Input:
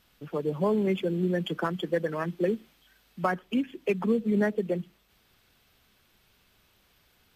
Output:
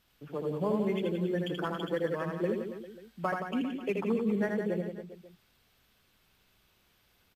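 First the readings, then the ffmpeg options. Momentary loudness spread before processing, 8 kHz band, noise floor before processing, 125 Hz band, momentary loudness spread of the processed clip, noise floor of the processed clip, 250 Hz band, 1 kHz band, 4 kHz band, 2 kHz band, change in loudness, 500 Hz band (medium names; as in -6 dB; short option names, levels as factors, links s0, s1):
7 LU, no reading, -66 dBFS, -4.0 dB, 11 LU, -69 dBFS, -3.5 dB, -3.5 dB, -3.5 dB, -3.5 dB, -3.5 dB, -3.5 dB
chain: -af "aecho=1:1:80|172|277.8|399.5|539.4:0.631|0.398|0.251|0.158|0.1,volume=0.531"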